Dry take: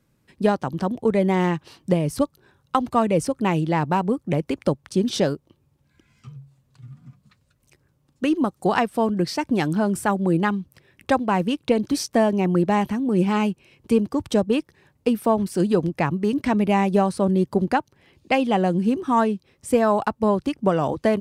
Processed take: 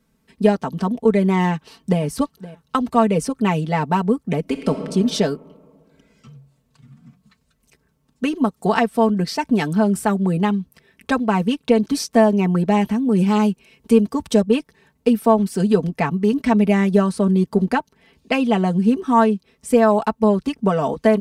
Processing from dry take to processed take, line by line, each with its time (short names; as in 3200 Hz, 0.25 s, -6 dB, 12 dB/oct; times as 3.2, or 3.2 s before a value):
1.49–2.02 echo throw 0.52 s, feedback 20%, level -17.5 dB
4.4–4.82 reverb throw, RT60 2.3 s, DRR 6 dB
13.11–14.42 high shelf 5100 Hz +4 dB
whole clip: comb 4.5 ms, depth 81%